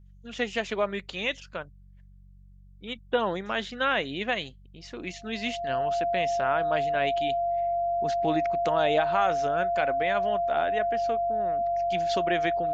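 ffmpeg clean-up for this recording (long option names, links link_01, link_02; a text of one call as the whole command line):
ffmpeg -i in.wav -af "bandreject=frequency=47.2:width_type=h:width=4,bandreject=frequency=94.4:width_type=h:width=4,bandreject=frequency=141.6:width_type=h:width=4,bandreject=frequency=188.8:width_type=h:width=4,bandreject=frequency=690:width=30" out.wav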